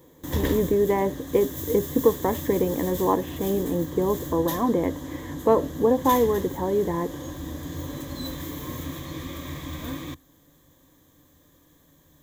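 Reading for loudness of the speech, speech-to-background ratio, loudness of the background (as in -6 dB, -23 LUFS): -24.5 LUFS, 9.5 dB, -34.0 LUFS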